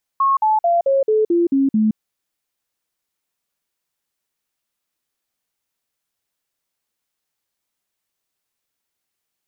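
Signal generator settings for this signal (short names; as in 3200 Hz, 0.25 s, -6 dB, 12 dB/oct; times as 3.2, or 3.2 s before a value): stepped sine 1090 Hz down, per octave 3, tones 8, 0.17 s, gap 0.05 s -12.5 dBFS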